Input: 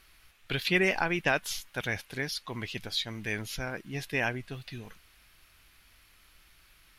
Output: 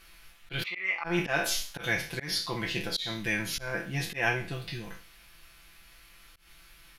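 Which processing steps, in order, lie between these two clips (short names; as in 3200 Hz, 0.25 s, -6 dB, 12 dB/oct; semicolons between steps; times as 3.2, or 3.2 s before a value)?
spectral trails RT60 0.42 s; 0.63–1.04 double band-pass 1600 Hz, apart 0.82 oct; comb 5.9 ms, depth 74%; auto swell 0.151 s; gain +1.5 dB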